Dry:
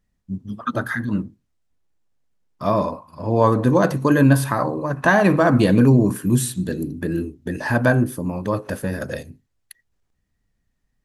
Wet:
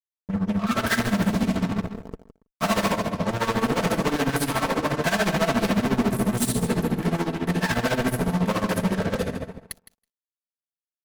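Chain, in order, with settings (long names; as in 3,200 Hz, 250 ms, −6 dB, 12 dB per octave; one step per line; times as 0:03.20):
0:08.78–0:09.19: inverse Chebyshev low-pass filter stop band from 4,000 Hz, stop band 50 dB
convolution reverb RT60 1.1 s, pre-delay 5 ms, DRR 2.5 dB
0:00.87–0:02.92: leveller curve on the samples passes 5
fuzz pedal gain 31 dB, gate −40 dBFS
comb filter 4.5 ms, depth 47%
repeating echo 162 ms, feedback 16%, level −11 dB
amplitude tremolo 14 Hz, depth 79%
level −6.5 dB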